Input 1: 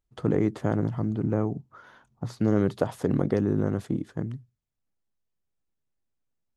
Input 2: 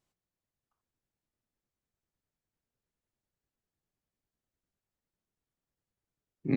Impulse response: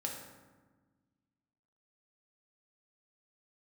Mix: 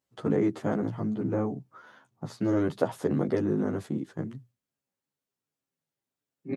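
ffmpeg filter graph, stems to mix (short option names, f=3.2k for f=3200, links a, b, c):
-filter_complex "[0:a]volume=2dB,asplit=2[a][b];[1:a]aecho=1:1:7.4:0.79,volume=2.5dB,asplit=2[c][d];[d]volume=-9.5dB[e];[b]apad=whole_len=289716[f];[c][f]sidechaingate=range=-9dB:threshold=-50dB:ratio=16:detection=peak[g];[2:a]atrim=start_sample=2205[h];[e][h]afir=irnorm=-1:irlink=0[i];[a][g][i]amix=inputs=3:normalize=0,highpass=150,asplit=2[j][k];[k]adelay=11.9,afreqshift=-2.5[l];[j][l]amix=inputs=2:normalize=1"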